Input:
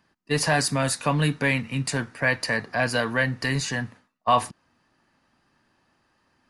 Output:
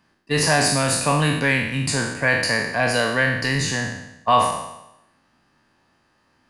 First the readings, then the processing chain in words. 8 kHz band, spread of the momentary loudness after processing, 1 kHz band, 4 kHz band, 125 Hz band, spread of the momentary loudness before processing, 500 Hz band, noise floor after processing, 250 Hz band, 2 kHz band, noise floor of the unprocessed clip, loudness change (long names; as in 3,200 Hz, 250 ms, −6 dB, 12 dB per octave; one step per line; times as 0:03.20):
+6.5 dB, 8 LU, +4.5 dB, +6.0 dB, +3.0 dB, 7 LU, +4.0 dB, −64 dBFS, +3.0 dB, +5.0 dB, −69 dBFS, +4.5 dB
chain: peak hold with a decay on every bin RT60 0.88 s
level +1.5 dB